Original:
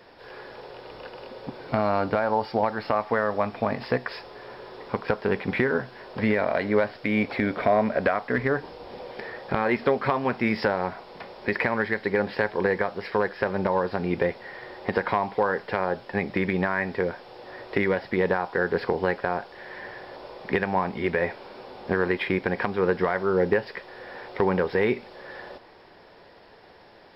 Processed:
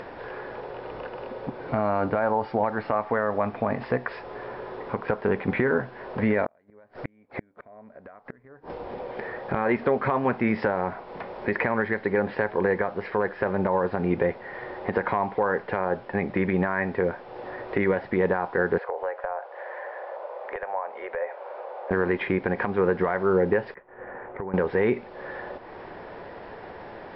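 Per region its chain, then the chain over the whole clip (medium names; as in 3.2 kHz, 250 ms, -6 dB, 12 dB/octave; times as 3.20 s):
6.45–8.70 s: peaking EQ 3.1 kHz -5.5 dB 1.1 oct + inverted gate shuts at -19 dBFS, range -40 dB
18.78–21.91 s: Chebyshev high-pass 540 Hz, order 4 + compression 2:1, threshold -34 dBFS + tilt EQ -4.5 dB/octave
23.74–24.54 s: low-pass 2.1 kHz 24 dB/octave + compression 3:1, threshold -36 dBFS + expander -36 dBFS
whole clip: low-pass 2 kHz 12 dB/octave; peak limiter -15 dBFS; upward compressor, threshold -33 dBFS; trim +2.5 dB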